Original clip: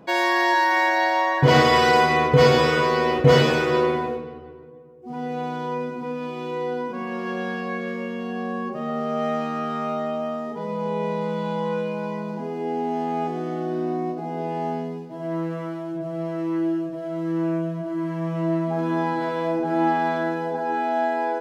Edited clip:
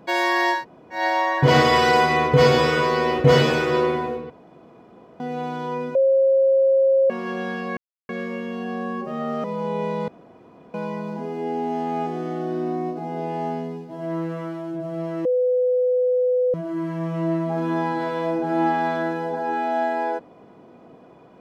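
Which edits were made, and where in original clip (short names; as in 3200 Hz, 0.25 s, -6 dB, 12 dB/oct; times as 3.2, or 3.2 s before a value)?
0.57–0.98 room tone, crossfade 0.16 s
4.3–5.2 room tone
5.95–7.1 bleep 538 Hz -13.5 dBFS
7.77 insert silence 0.32 s
9.12–10.65 cut
11.29–11.95 room tone
16.46–17.75 bleep 501 Hz -16.5 dBFS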